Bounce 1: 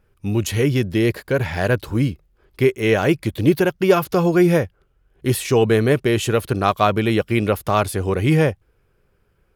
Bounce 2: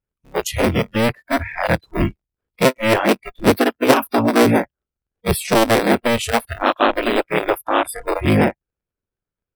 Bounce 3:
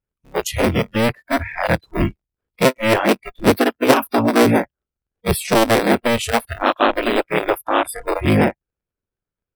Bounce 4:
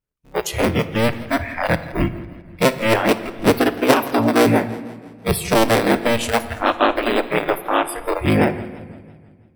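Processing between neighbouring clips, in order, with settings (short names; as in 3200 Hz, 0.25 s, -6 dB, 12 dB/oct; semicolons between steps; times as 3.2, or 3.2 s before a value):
cycle switcher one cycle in 3, inverted; spectral noise reduction 27 dB; gain +1.5 dB
nothing audible
shoebox room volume 1300 m³, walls mixed, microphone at 0.43 m; warbling echo 0.166 s, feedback 54%, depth 111 cents, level -19 dB; gain -1 dB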